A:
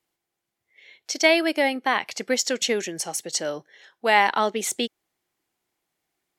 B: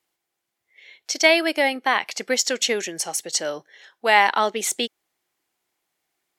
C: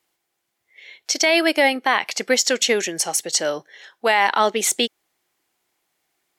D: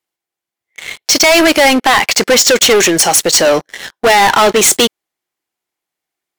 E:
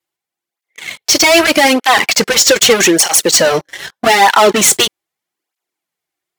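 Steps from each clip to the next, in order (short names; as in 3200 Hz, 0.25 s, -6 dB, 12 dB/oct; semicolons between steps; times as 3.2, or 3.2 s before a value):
low shelf 330 Hz -8 dB; gain +3 dB
limiter -10.5 dBFS, peak gain reduction 9 dB; gain +4.5 dB
sample leveller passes 5; gain +1 dB
tape flanging out of phase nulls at 0.81 Hz, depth 4.9 ms; gain +3 dB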